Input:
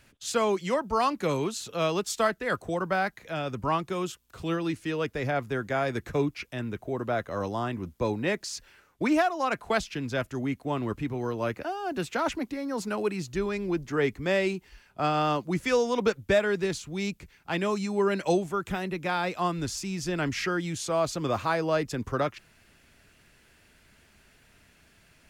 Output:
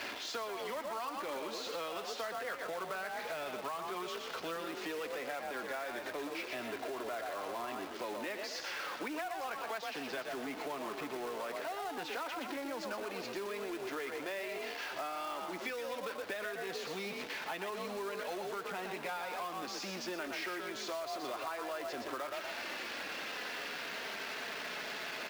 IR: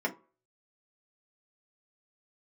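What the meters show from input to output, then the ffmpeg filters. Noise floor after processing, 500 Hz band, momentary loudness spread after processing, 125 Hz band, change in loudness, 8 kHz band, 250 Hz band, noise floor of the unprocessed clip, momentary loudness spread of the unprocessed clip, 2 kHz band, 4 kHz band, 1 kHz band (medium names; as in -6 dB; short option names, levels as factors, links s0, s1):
-44 dBFS, -11.5 dB, 1 LU, -25.0 dB, -10.5 dB, -9.0 dB, -15.0 dB, -61 dBFS, 7 LU, -6.5 dB, -4.0 dB, -9.0 dB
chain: -filter_complex "[0:a]aeval=exprs='val(0)+0.5*0.0398*sgn(val(0))':c=same,highpass=390,asplit=5[s0][s1][s2][s3][s4];[s1]adelay=120,afreqshift=42,volume=0.473[s5];[s2]adelay=240,afreqshift=84,volume=0.17[s6];[s3]adelay=360,afreqshift=126,volume=0.0617[s7];[s4]adelay=480,afreqshift=168,volume=0.0221[s8];[s0][s5][s6][s7][s8]amix=inputs=5:normalize=0,areverse,acompressor=mode=upward:threshold=0.0501:ratio=2.5,areverse,lowpass=f=5200:w=0.5412,lowpass=f=5200:w=1.3066,equalizer=f=600:w=0.43:g=3.5,flanger=delay=2.9:depth=1.8:regen=-50:speed=0.14:shape=sinusoidal,acrossover=split=1000[s9][s10];[s9]alimiter=level_in=1.26:limit=0.0631:level=0:latency=1:release=76,volume=0.794[s11];[s11][s10]amix=inputs=2:normalize=0,acrusher=bits=3:mode=log:mix=0:aa=0.000001,acompressor=threshold=0.0251:ratio=6,volume=0.596"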